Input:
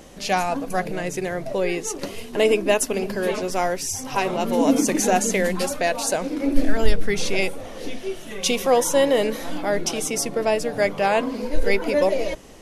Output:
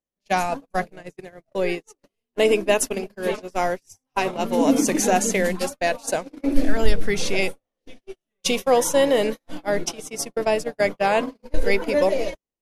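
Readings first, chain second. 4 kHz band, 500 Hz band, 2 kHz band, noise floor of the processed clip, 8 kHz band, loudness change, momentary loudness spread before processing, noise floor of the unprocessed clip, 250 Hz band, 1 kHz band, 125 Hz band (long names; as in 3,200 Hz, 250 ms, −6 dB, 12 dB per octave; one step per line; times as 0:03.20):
−1.5 dB, −0.5 dB, −0.5 dB, −85 dBFS, −2.0 dB, −0.5 dB, 9 LU, −36 dBFS, −1.0 dB, −0.5 dB, −1.5 dB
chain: noise gate −23 dBFS, range −49 dB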